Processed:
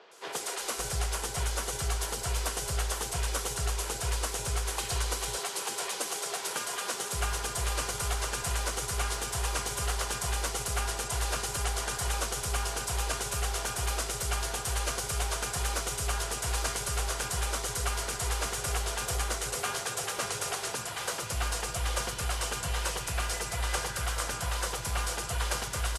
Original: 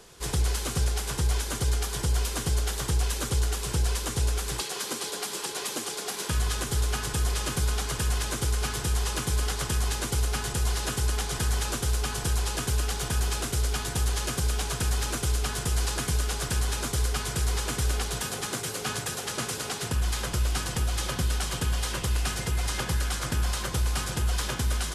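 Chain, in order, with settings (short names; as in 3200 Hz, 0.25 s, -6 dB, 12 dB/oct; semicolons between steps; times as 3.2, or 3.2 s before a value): resonant low shelf 410 Hz -6.5 dB, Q 1.5; three bands offset in time mids, highs, lows 0.11/0.55 s, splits 230/4100 Hz; speed mistake 25 fps video run at 24 fps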